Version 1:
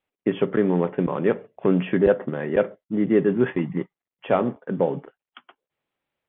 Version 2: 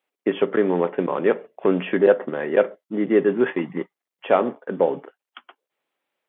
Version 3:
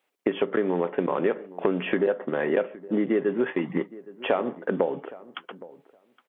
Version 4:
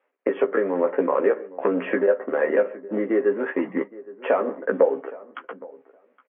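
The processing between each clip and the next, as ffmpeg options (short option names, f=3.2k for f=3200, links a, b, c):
-af "highpass=310,volume=3.5dB"
-filter_complex "[0:a]acompressor=threshold=-26dB:ratio=6,asplit=2[a][b];[b]adelay=816,lowpass=f=1.3k:p=1,volume=-18.5dB,asplit=2[c][d];[d]adelay=816,lowpass=f=1.3k:p=1,volume=0.15[e];[a][c][e]amix=inputs=3:normalize=0,volume=5dB"
-filter_complex "[0:a]aphaser=in_gain=1:out_gain=1:delay=2.8:decay=0.25:speed=1.1:type=sinusoidal,highpass=f=250:w=0.5412,highpass=f=250:w=1.3066,equalizer=f=350:t=q:w=4:g=-6,equalizer=f=520:t=q:w=4:g=5,equalizer=f=780:t=q:w=4:g=-4,lowpass=f=2.1k:w=0.5412,lowpass=f=2.1k:w=1.3066,asplit=2[a][b];[b]adelay=15,volume=-4.5dB[c];[a][c]amix=inputs=2:normalize=0,volume=2.5dB"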